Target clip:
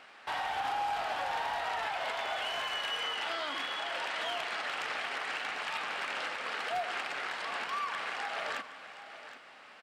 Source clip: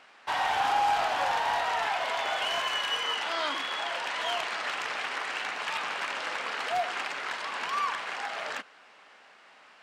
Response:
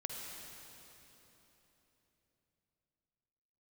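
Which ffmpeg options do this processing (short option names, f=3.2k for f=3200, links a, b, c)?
-filter_complex "[0:a]equalizer=f=6.4k:t=o:w=0.57:g=-3.5,bandreject=f=1k:w=15,alimiter=level_in=4dB:limit=-24dB:level=0:latency=1:release=307,volume=-4dB,aecho=1:1:768:0.211,asplit=2[a][b];[1:a]atrim=start_sample=2205,lowshelf=f=120:g=10[c];[b][c]afir=irnorm=-1:irlink=0,volume=-10.5dB[d];[a][d]amix=inputs=2:normalize=0"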